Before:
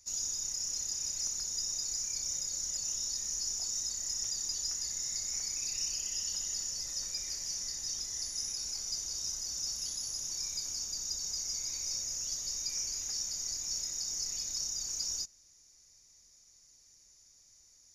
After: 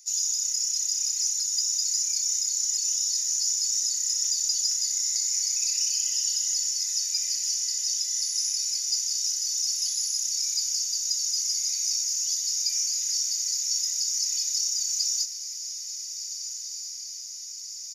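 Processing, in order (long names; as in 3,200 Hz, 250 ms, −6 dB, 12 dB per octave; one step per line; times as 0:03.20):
inverse Chebyshev high-pass filter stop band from 850 Hz, stop band 40 dB
high-shelf EQ 2,400 Hz +9.5 dB
comb filter 2 ms, depth 34%
on a send: feedback delay with all-pass diffusion 1,593 ms, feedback 68%, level −10 dB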